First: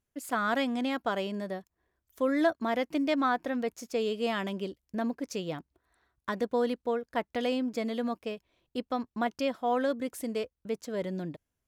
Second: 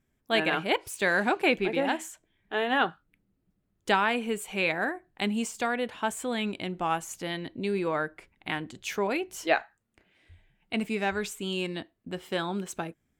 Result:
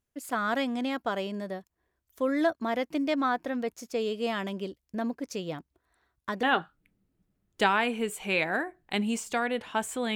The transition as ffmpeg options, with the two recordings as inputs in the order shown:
ffmpeg -i cue0.wav -i cue1.wav -filter_complex "[0:a]apad=whole_dur=10.15,atrim=end=10.15,atrim=end=6.432[link_01];[1:a]atrim=start=2.708:end=6.43[link_02];[link_01][link_02]acrossfade=duration=0.004:curve1=hsin:curve2=hsin" out.wav

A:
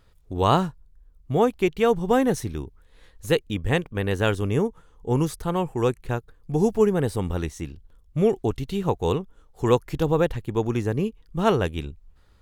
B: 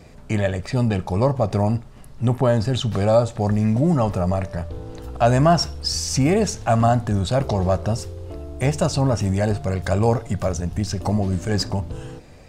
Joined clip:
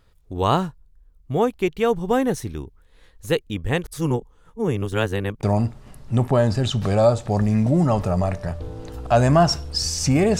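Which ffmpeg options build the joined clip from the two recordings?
ffmpeg -i cue0.wav -i cue1.wav -filter_complex "[0:a]apad=whole_dur=10.39,atrim=end=10.39,asplit=2[link_01][link_02];[link_01]atrim=end=3.842[link_03];[link_02]atrim=start=3.838:end=5.432,asetpts=PTS-STARTPTS,areverse[link_04];[1:a]atrim=start=1.528:end=6.49[link_05];[link_03][link_04]acrossfade=duration=0.004:curve1=hsin:curve2=hsin[link_06];[link_06][link_05]acrossfade=duration=0.004:curve1=hsin:curve2=hsin" out.wav

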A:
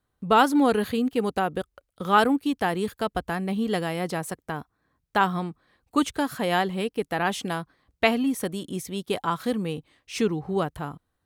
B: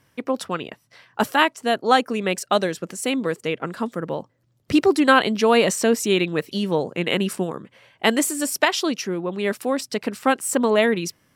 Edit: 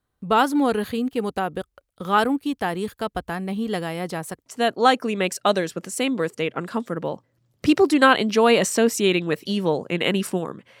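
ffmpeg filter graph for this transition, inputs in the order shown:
ffmpeg -i cue0.wav -i cue1.wav -filter_complex "[0:a]apad=whole_dur=10.8,atrim=end=10.8,atrim=end=4.462[link_01];[1:a]atrim=start=1.518:end=7.86[link_02];[link_01][link_02]acrossfade=duration=0.004:curve1=hsin:curve2=hsin" out.wav

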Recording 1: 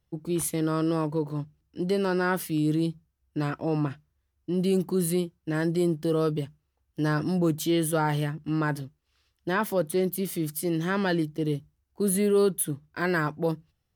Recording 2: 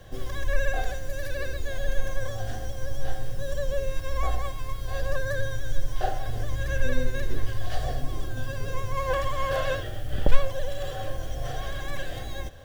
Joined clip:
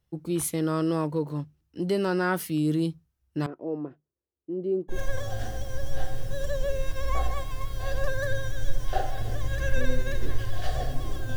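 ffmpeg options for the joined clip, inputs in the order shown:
ffmpeg -i cue0.wav -i cue1.wav -filter_complex "[0:a]asettb=1/sr,asplit=3[link_01][link_02][link_03];[link_01]atrim=end=3.464[link_04];[link_02]atrim=start=3.46:end=4.98,asetpts=PTS-STARTPTS,afade=type=in:duration=0.004:curve=qsin,afade=type=out:start_time=1.516:duration=0.004:curve=qsin,bandpass=frequency=410:width_type=q:width=2.3:csg=0[link_05];[link_03]atrim=start=4.976[link_06];[link_04][link_05]acrossfade=duration=0.004:curve1=hsin:curve2=qsin[link_07];[link_07][link_06]acrossfade=duration=0.004:curve1=qsin:curve2=hsin,apad=whole_dur=11.36,atrim=end=11.36,atrim=end=4.98,asetpts=PTS-STARTPTS[link_08];[1:a]atrim=start=1.96:end=8.44,asetpts=PTS-STARTPTS[link_09];[link_08][link_09]acrossfade=duration=0.1:curve1=tri:curve2=tri" out.wav

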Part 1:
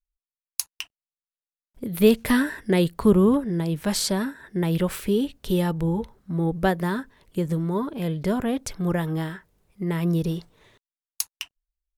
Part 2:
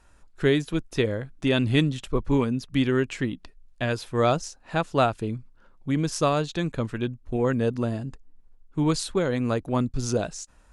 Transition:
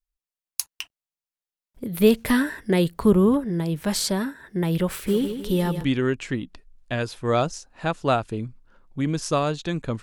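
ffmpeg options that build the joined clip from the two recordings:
ffmpeg -i cue0.wav -i cue1.wav -filter_complex "[0:a]asplit=3[link_01][link_02][link_03];[link_01]afade=type=out:start_time=5.06:duration=0.02[link_04];[link_02]aecho=1:1:155|310|465|620|775:0.355|0.163|0.0751|0.0345|0.0159,afade=type=in:start_time=5.06:duration=0.02,afade=type=out:start_time=5.85:duration=0.02[link_05];[link_03]afade=type=in:start_time=5.85:duration=0.02[link_06];[link_04][link_05][link_06]amix=inputs=3:normalize=0,apad=whole_dur=10.02,atrim=end=10.02,atrim=end=5.85,asetpts=PTS-STARTPTS[link_07];[1:a]atrim=start=2.69:end=6.92,asetpts=PTS-STARTPTS[link_08];[link_07][link_08]acrossfade=duration=0.06:curve1=tri:curve2=tri" out.wav

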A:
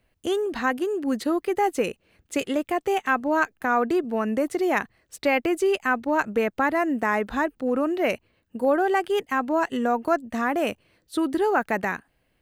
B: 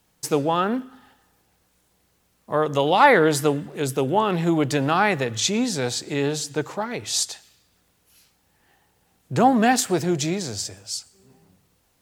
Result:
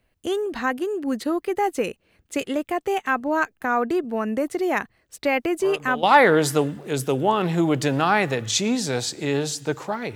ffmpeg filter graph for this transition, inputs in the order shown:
ffmpeg -i cue0.wav -i cue1.wav -filter_complex "[1:a]asplit=2[link_01][link_02];[0:a]apad=whole_dur=10.15,atrim=end=10.15,atrim=end=6.032[link_03];[link_02]atrim=start=2.918:end=7.04[link_04];[link_01]atrim=start=2.21:end=2.92,asetpts=PTS-STARTPTS,volume=-12.5dB,afade=type=in:duration=0.004:curve=hsin,afade=type=out:start_time=0.706:duration=0.004:curve=hsin,adelay=5320[link_05];[link_03][link_04]acrossfade=duration=0.004:curve1=hsin:curve2=hsin[link_06];[link_06][link_05]amix=inputs=2:normalize=0" out.wav

